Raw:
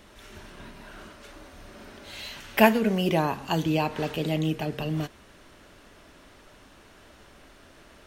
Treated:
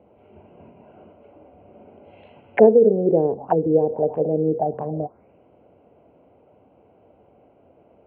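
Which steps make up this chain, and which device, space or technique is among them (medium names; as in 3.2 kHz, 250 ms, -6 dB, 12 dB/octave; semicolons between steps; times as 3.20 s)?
local Wiener filter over 25 samples; treble shelf 4 kHz -8.5 dB; envelope filter bass rig (touch-sensitive low-pass 440–3800 Hz down, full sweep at -23.5 dBFS; cabinet simulation 79–2400 Hz, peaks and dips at 490 Hz +9 dB, 740 Hz +8 dB, 1.2 kHz -8 dB); trim -1.5 dB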